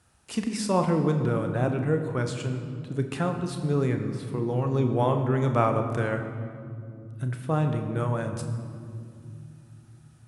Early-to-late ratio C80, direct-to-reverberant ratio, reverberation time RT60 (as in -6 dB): 8.5 dB, 5.5 dB, 2.5 s